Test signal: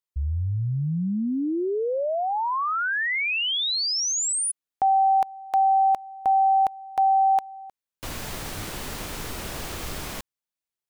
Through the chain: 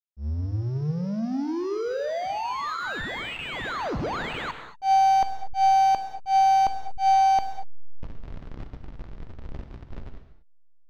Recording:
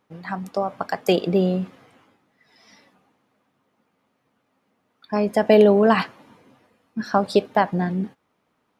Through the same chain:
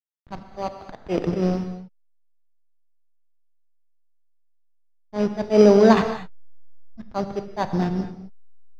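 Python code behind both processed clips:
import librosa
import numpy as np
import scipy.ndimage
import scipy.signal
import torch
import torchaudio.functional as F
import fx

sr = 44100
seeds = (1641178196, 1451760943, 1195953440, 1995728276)

y = fx.sample_hold(x, sr, seeds[0], rate_hz=5400.0, jitter_pct=0)
y = fx.backlash(y, sr, play_db=-21.5)
y = fx.auto_swell(y, sr, attack_ms=104.0)
y = fx.air_absorb(y, sr, metres=190.0)
y = fx.rev_gated(y, sr, seeds[1], gate_ms=260, shape='flat', drr_db=7.5)
y = F.gain(torch.from_numpy(y), 2.5).numpy()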